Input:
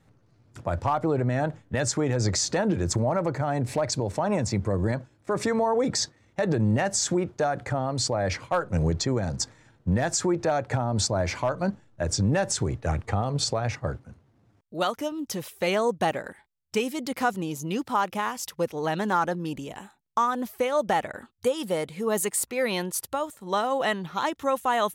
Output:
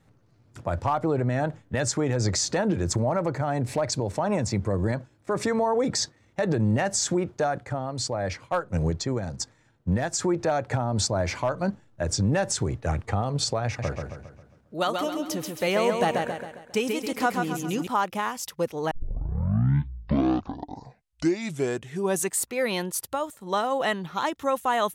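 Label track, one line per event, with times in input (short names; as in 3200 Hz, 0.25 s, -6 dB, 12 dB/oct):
7.580000	10.190000	upward expander, over -33 dBFS
13.650000	17.870000	feedback echo 0.135 s, feedback 46%, level -4.5 dB
18.910000	18.910000	tape start 3.57 s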